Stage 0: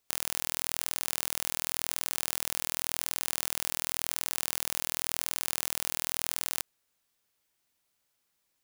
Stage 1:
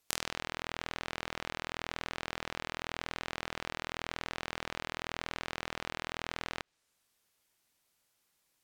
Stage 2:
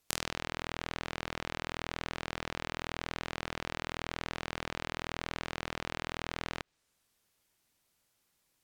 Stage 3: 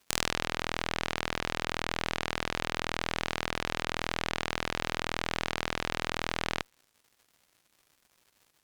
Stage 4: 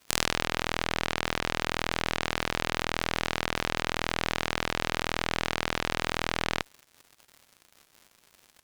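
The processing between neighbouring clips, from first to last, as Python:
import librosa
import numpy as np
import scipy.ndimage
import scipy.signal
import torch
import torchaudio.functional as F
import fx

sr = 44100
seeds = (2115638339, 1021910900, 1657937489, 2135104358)

y1 = fx.env_lowpass_down(x, sr, base_hz=2400.0, full_db=-40.5)
y1 = y1 * 10.0 ** (2.0 / 20.0)
y2 = fx.low_shelf(y1, sr, hz=320.0, db=5.5)
y3 = fx.dmg_crackle(y2, sr, seeds[0], per_s=220.0, level_db=-50.0)
y3 = fx.cheby_harmonics(y3, sr, harmonics=(6,), levels_db=(-10,), full_scale_db=-5.5)
y4 = fx.dmg_crackle(y3, sr, seeds[1], per_s=96.0, level_db=-41.0)
y4 = y4 * 10.0 ** (3.0 / 20.0)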